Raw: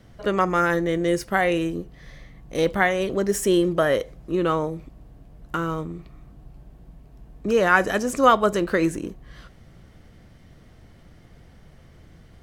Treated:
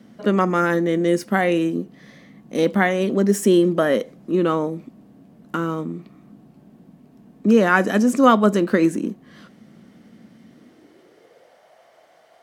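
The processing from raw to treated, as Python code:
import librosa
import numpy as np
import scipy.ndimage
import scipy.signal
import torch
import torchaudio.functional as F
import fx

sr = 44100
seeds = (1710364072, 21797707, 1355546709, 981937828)

y = fx.filter_sweep_highpass(x, sr, from_hz=220.0, to_hz=660.0, start_s=10.47, end_s=11.66, q=4.1)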